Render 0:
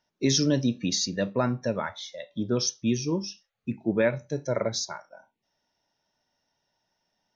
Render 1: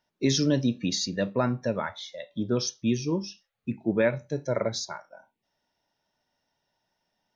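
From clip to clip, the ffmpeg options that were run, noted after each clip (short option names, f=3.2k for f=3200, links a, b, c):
-af "equalizer=f=5.8k:t=o:w=0.42:g=-4.5"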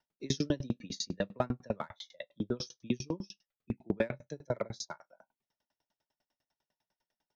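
-filter_complex "[0:a]acrossover=split=250|1100|1600[a][b][c][d];[c]asoftclip=type=hard:threshold=-37dB[e];[a][b][e][d]amix=inputs=4:normalize=0,aeval=exprs='val(0)*pow(10,-35*if(lt(mod(10*n/s,1),2*abs(10)/1000),1-mod(10*n/s,1)/(2*abs(10)/1000),(mod(10*n/s,1)-2*abs(10)/1000)/(1-2*abs(10)/1000))/20)':c=same"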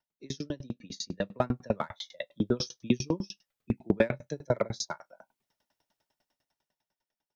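-af "dynaudnorm=f=290:g=9:m=13.5dB,volume=-5.5dB"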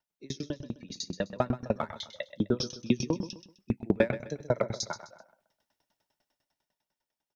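-af "aecho=1:1:128|256|384:0.237|0.0759|0.0243"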